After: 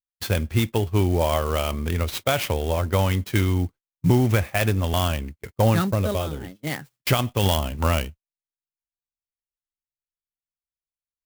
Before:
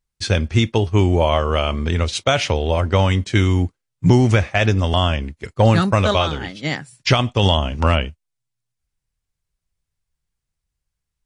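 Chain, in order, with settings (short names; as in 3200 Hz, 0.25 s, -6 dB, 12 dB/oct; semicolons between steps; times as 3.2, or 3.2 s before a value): 5.87–6.67 band shelf 1900 Hz -8.5 dB 3 oct; gate -33 dBFS, range -24 dB; clock jitter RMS 0.034 ms; gain -5 dB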